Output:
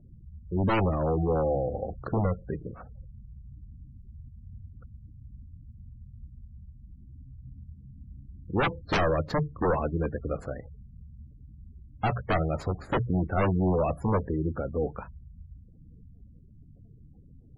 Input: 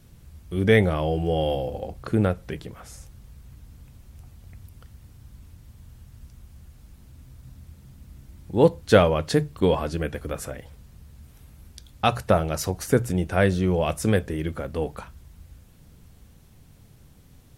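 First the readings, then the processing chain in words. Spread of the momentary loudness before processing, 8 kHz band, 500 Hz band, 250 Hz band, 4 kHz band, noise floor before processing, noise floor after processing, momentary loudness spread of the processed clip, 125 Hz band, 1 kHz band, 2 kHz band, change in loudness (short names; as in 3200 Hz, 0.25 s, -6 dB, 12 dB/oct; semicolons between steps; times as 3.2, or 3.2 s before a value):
15 LU, under -20 dB, -6.5 dB, -4.5 dB, -9.5 dB, -52 dBFS, -52 dBFS, 22 LU, -3.5 dB, -2.0 dB, -5.5 dB, -5.0 dB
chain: median filter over 15 samples; wavefolder -18.5 dBFS; spectral gate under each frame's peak -20 dB strong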